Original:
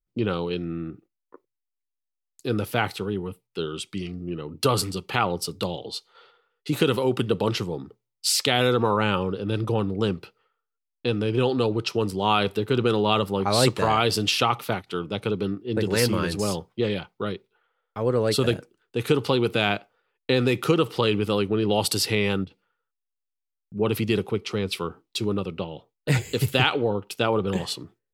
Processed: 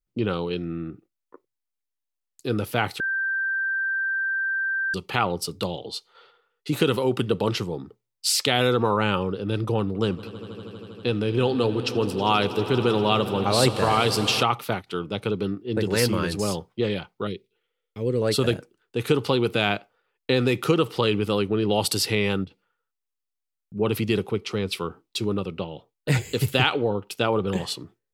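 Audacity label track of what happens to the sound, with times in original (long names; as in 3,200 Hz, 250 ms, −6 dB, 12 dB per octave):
3.000000	4.940000	beep over 1,570 Hz −22.5 dBFS
9.790000	14.430000	echo that builds up and dies away 80 ms, loudest repeat 5, its level −18 dB
17.270000	18.220000	flat-topped bell 1,000 Hz −15 dB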